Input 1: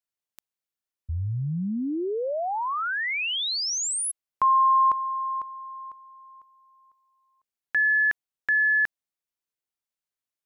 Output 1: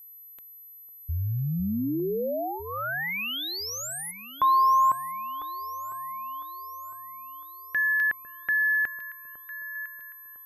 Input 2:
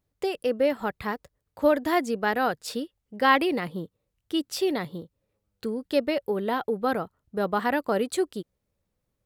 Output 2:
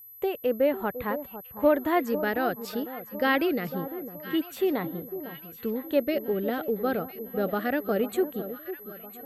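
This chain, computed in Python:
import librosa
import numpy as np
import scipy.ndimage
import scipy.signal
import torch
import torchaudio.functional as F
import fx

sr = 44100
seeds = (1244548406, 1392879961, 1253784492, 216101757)

y = fx.filter_lfo_notch(x, sr, shape='square', hz=0.25, low_hz=970.0, high_hz=5100.0, q=1.8)
y = y + 10.0 ** (-37.0 / 20.0) * np.sin(2.0 * np.pi * 12000.0 * np.arange(len(y)) / sr)
y = fx.high_shelf(y, sr, hz=3200.0, db=-8.5)
y = fx.echo_alternate(y, sr, ms=502, hz=1100.0, feedback_pct=68, wet_db=-11)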